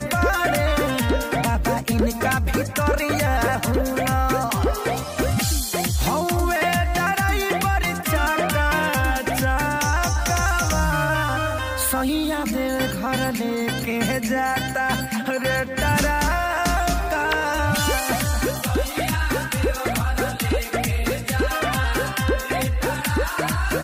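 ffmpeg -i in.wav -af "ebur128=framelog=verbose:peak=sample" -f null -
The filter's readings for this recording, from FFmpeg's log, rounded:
Integrated loudness:
  I:         -21.8 LUFS
  Threshold: -31.8 LUFS
Loudness range:
  LRA:         2.0 LU
  Threshold: -41.8 LUFS
  LRA low:   -22.9 LUFS
  LRA high:  -20.8 LUFS
Sample peak:
  Peak:      -10.4 dBFS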